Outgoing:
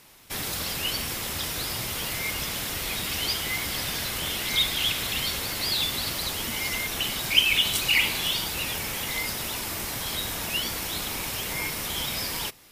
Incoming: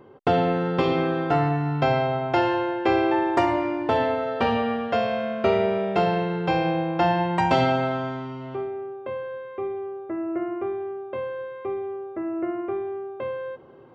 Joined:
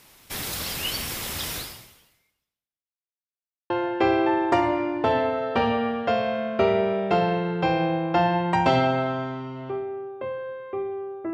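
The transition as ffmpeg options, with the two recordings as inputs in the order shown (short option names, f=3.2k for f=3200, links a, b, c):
-filter_complex "[0:a]apad=whole_dur=11.33,atrim=end=11.33,asplit=2[a][b];[a]atrim=end=3.22,asetpts=PTS-STARTPTS,afade=t=out:st=1.56:d=1.66:c=exp[c];[b]atrim=start=3.22:end=3.7,asetpts=PTS-STARTPTS,volume=0[d];[1:a]atrim=start=2.55:end=10.18,asetpts=PTS-STARTPTS,afade=t=in:d=0.004:c=hsin[e];[c][d][e]concat=n=3:v=0:a=1"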